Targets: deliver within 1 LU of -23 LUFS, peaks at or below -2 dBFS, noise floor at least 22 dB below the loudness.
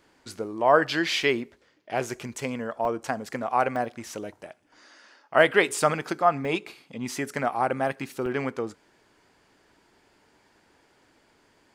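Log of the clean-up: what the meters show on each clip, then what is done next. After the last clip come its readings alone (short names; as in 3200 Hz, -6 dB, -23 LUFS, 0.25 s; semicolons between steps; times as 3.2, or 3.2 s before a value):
dropouts 5; longest dropout 1.5 ms; loudness -26.5 LUFS; peak -3.0 dBFS; loudness target -23.0 LUFS
-> interpolate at 1.23/2.85/3.76/6.45/8.26, 1.5 ms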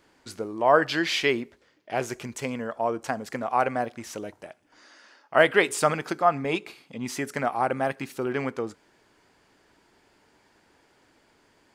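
dropouts 0; loudness -26.5 LUFS; peak -3.0 dBFS; loudness target -23.0 LUFS
-> gain +3.5 dB; limiter -2 dBFS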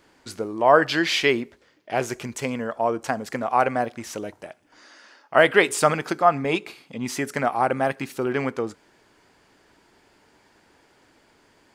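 loudness -23.0 LUFS; peak -2.0 dBFS; noise floor -60 dBFS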